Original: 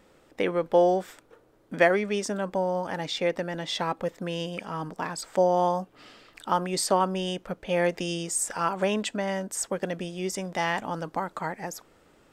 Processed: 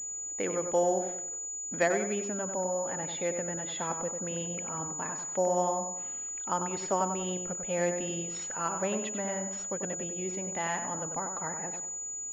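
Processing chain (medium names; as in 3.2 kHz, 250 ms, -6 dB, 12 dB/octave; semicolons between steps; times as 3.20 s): tape echo 95 ms, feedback 42%, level -5.5 dB, low-pass 2.2 kHz; class-D stage that switches slowly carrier 6.9 kHz; trim -6.5 dB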